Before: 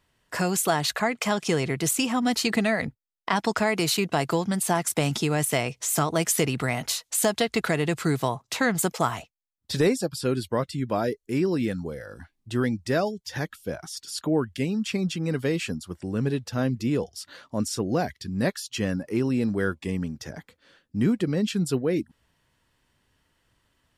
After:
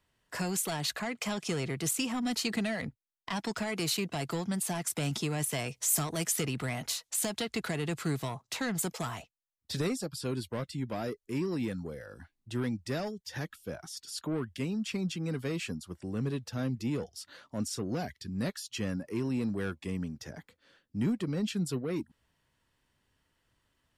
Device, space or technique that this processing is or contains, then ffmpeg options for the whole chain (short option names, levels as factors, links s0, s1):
one-band saturation: -filter_complex "[0:a]asettb=1/sr,asplit=3[s0][s1][s2];[s0]atrim=end=5.584[s3];[s1]atrim=start=5.58:end=6.27,asetpts=PTS-STARTPTS,afade=t=in:d=0.004:c=qsin,afade=t=out:st=0.686:d=0.004:c=qsin,highshelf=f=7200:g=8.5[s4];[s2]atrim=start=6.266[s5];[s3][s4]acrossfade=d=0.004:c1=hsin:c2=qsin[s6];[s6][s5]acrossfade=d=0.004:c1=qsin:c2=hsin,acrossover=split=260|2400[s7][s8][s9];[s8]asoftclip=type=tanh:threshold=0.0422[s10];[s7][s10][s9]amix=inputs=3:normalize=0,volume=0.501"